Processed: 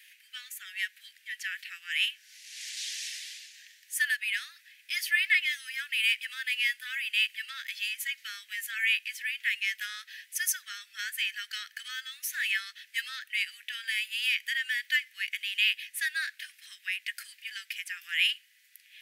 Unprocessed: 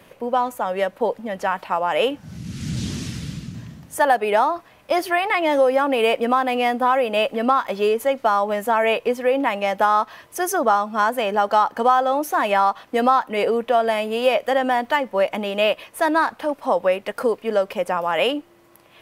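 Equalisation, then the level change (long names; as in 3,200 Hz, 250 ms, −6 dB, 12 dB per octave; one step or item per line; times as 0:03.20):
Butterworth high-pass 1,700 Hz 72 dB per octave
0.0 dB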